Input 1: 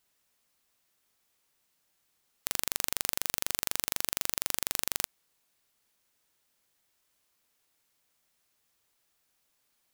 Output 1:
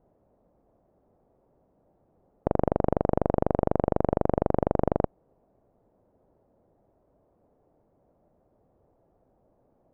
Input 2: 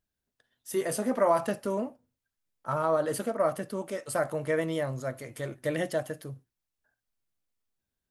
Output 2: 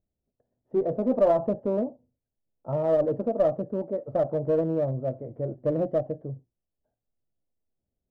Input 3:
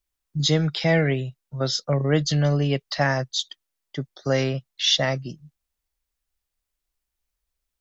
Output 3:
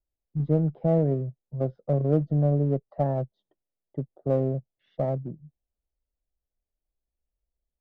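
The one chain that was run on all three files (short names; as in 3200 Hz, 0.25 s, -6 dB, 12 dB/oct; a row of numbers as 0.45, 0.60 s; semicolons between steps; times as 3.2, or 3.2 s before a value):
Chebyshev low-pass 650 Hz, order 3; in parallel at -6 dB: one-sided clip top -28.5 dBFS, bottom -11.5 dBFS; on the sum: match loudness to -27 LUFS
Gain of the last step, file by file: +20.0, +2.0, -4.0 dB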